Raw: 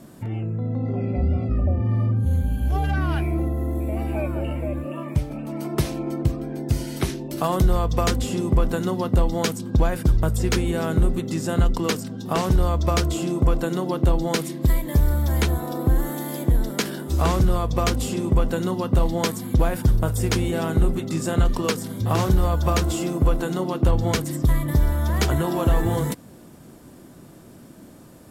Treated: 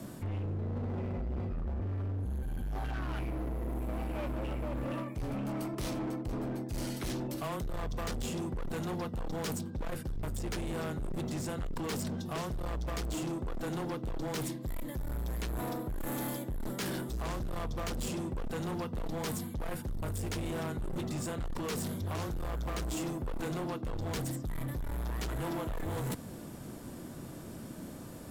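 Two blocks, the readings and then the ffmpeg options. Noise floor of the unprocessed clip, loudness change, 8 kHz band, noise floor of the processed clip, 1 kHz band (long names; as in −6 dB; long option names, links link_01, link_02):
−46 dBFS, −14.0 dB, −10.5 dB, −45 dBFS, −12.5 dB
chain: -af "areverse,acompressor=threshold=-28dB:ratio=10,areverse,afreqshift=-15,asoftclip=type=hard:threshold=-34dB,volume=1dB"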